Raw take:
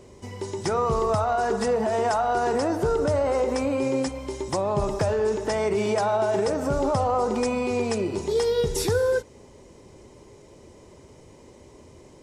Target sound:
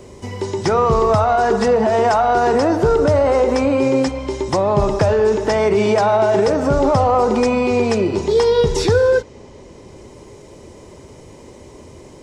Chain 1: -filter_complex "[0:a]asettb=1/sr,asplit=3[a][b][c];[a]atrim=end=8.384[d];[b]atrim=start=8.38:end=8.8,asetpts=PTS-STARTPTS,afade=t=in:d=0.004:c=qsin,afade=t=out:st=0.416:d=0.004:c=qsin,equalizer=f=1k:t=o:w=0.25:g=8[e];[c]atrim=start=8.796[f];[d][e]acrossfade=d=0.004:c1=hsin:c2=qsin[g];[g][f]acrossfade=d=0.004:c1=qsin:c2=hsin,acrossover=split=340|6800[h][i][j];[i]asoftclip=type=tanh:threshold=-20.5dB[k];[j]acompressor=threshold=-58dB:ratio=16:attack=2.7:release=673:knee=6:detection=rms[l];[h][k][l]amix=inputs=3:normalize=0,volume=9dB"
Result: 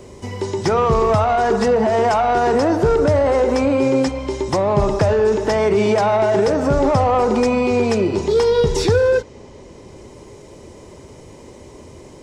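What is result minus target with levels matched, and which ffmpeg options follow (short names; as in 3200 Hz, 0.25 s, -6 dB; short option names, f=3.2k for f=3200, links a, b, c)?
soft clip: distortion +10 dB
-filter_complex "[0:a]asettb=1/sr,asplit=3[a][b][c];[a]atrim=end=8.384[d];[b]atrim=start=8.38:end=8.8,asetpts=PTS-STARTPTS,afade=t=in:d=0.004:c=qsin,afade=t=out:st=0.416:d=0.004:c=qsin,equalizer=f=1k:t=o:w=0.25:g=8[e];[c]atrim=start=8.796[f];[d][e]acrossfade=d=0.004:c1=hsin:c2=qsin[g];[g][f]acrossfade=d=0.004:c1=qsin:c2=hsin,acrossover=split=340|6800[h][i][j];[i]asoftclip=type=tanh:threshold=-14dB[k];[j]acompressor=threshold=-58dB:ratio=16:attack=2.7:release=673:knee=6:detection=rms[l];[h][k][l]amix=inputs=3:normalize=0,volume=9dB"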